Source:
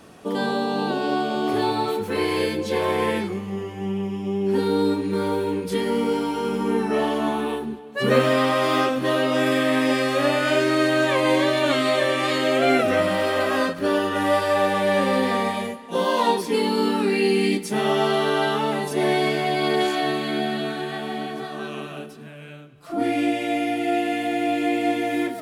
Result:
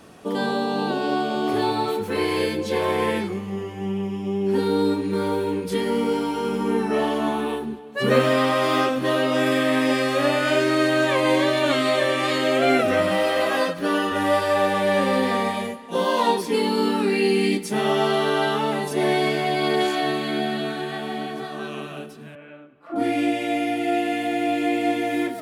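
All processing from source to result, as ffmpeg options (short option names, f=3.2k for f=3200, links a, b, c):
-filter_complex "[0:a]asettb=1/sr,asplit=3[a][b][c];[a]atrim=end=13.114[d];[b]atrim=start=13.11:end=14.12,asetpts=PTS-STARTPTS,afade=t=in:d=0.004:c=qsin,afade=t=out:st=1.006:d=0.004:c=qsin,lowshelf=f=150:g=-6,bandreject=f=7.3k:w=22,aecho=1:1:6.1:0.59,atrim=end_sample=44541[e];[c]atrim=start=14.116[f];[d][e]acrossfade=d=0.004:c1=hsin:c2=qsin[g];[g][f]acrossfade=d=0.004:c1=qsin:c2=hsin,asettb=1/sr,asplit=3[h][i][j];[h]atrim=end=22.354[k];[i]atrim=start=22.35:end=22.96,asetpts=PTS-STARTPTS,afade=t=in:d=0.004:c=qsin,afade=t=out:st=0.606:d=0.004:c=qsin,acrossover=split=200 2500:gain=0.158 1 0.0631[l][m][n];[l][m][n]amix=inputs=3:normalize=0,aecho=1:1:3.5:0.33,atrim=end_sample=26901[o];[j]atrim=start=22.956[p];[k][o]acrossfade=d=0.004:c1=hsin:c2=qsin[q];[q][p]acrossfade=d=0.004:c1=qsin:c2=hsin"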